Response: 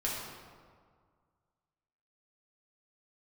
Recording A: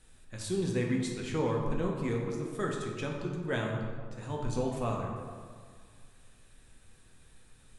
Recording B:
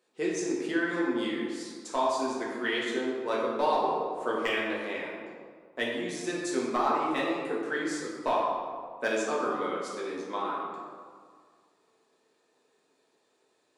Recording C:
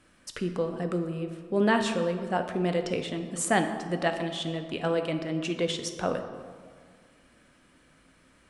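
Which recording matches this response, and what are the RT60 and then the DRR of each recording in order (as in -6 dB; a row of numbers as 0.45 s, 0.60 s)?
B; 1.9 s, 1.9 s, 1.9 s; -1.5 dB, -5.5 dB, 5.5 dB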